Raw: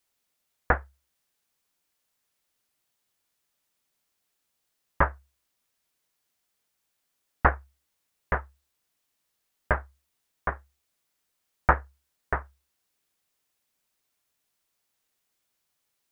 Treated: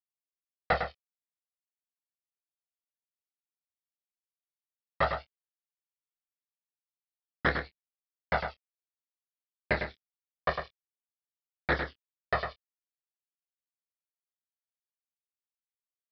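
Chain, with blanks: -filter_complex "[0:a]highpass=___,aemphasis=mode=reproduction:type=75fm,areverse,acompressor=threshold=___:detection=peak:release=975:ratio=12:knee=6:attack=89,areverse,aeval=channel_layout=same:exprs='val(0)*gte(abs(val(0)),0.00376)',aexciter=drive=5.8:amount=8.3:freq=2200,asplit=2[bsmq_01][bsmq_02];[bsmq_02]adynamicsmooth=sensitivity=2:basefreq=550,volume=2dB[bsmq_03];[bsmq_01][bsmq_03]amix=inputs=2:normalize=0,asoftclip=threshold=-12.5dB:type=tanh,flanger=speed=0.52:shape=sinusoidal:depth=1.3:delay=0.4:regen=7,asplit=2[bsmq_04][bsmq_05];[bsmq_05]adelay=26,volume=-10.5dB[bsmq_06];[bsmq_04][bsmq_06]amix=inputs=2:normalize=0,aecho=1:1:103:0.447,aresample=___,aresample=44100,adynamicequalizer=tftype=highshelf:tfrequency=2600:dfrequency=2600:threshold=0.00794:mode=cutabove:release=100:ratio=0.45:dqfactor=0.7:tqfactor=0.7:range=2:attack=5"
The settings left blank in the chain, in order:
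150, -31dB, 11025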